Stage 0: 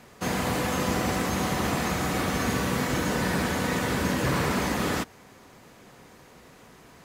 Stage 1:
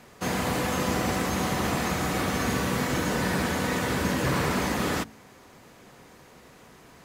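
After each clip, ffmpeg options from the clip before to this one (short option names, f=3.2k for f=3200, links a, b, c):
-af "bandreject=f=54.48:t=h:w=4,bandreject=f=108.96:t=h:w=4,bandreject=f=163.44:t=h:w=4,bandreject=f=217.92:t=h:w=4,bandreject=f=272.4:t=h:w=4"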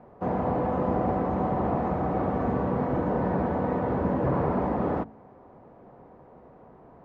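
-af "lowpass=f=770:t=q:w=1.6"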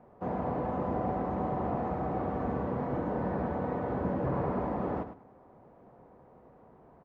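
-af "aecho=1:1:103|206:0.299|0.0508,volume=-6dB"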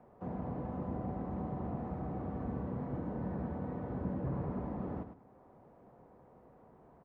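-filter_complex "[0:a]acrossover=split=280[a][b];[b]acompressor=threshold=-58dB:ratio=1.5[c];[a][c]amix=inputs=2:normalize=0,volume=-2.5dB"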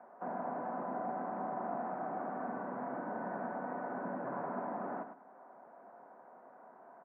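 -af "highpass=f=260:w=0.5412,highpass=f=260:w=1.3066,equalizer=f=320:t=q:w=4:g=-7,equalizer=f=460:t=q:w=4:g=-7,equalizer=f=680:t=q:w=4:g=7,equalizer=f=980:t=q:w=4:g=4,equalizer=f=1.5k:t=q:w=4:g=10,lowpass=f=2.2k:w=0.5412,lowpass=f=2.2k:w=1.3066,volume=3dB"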